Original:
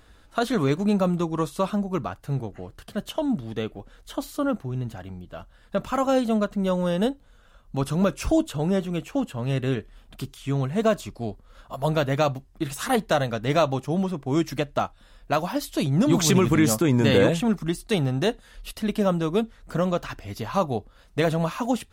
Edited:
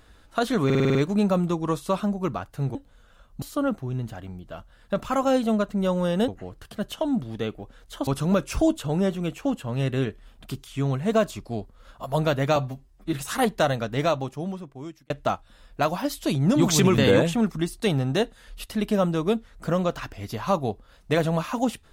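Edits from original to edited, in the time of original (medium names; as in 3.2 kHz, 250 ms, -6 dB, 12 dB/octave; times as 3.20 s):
0.65 s: stutter 0.05 s, 7 plays
2.45–4.24 s: swap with 7.10–7.77 s
12.26–12.64 s: stretch 1.5×
13.26–14.61 s: fade out
16.49–17.05 s: delete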